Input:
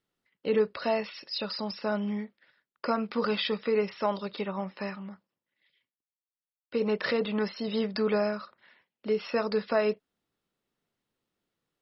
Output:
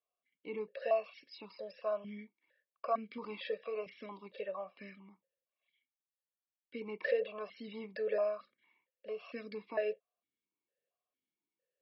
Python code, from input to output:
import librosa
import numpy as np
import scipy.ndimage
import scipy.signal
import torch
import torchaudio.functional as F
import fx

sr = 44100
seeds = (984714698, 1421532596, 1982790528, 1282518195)

y = x + 0.65 * np.pad(x, (int(1.8 * sr / 1000.0), 0))[:len(x)]
y = fx.vowel_held(y, sr, hz=4.4)
y = y * 10.0 ** (1.0 / 20.0)